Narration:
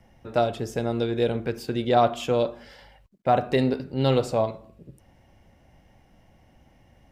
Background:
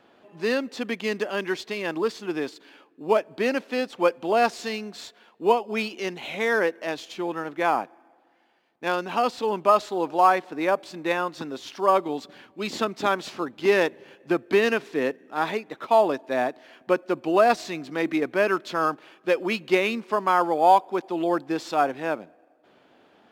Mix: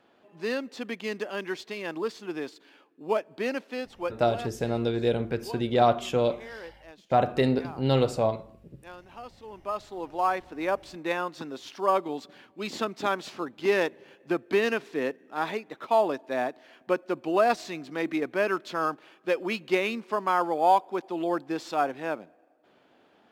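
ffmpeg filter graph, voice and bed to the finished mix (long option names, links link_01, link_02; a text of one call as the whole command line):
ffmpeg -i stem1.wav -i stem2.wav -filter_complex "[0:a]adelay=3850,volume=-1.5dB[link_01];[1:a]volume=10.5dB,afade=type=out:start_time=3.53:duration=0.96:silence=0.188365,afade=type=in:start_time=9.44:duration=1.38:silence=0.158489[link_02];[link_01][link_02]amix=inputs=2:normalize=0" out.wav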